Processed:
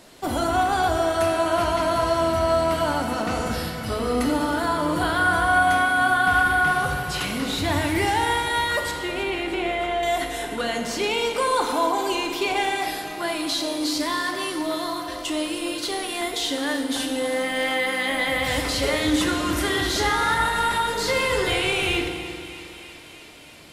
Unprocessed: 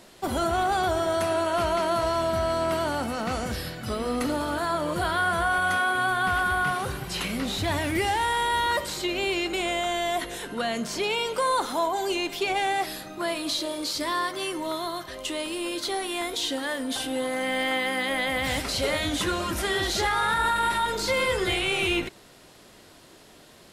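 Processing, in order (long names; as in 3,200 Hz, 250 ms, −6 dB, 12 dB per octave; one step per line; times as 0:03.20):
0:08.91–0:10.03: low-pass filter 2,500 Hz 12 dB per octave
feedback echo with a high-pass in the loop 316 ms, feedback 74%, high-pass 600 Hz, level −15 dB
on a send at −3.5 dB: convolution reverb RT60 1.9 s, pre-delay 3 ms
on the sum: level +1.5 dB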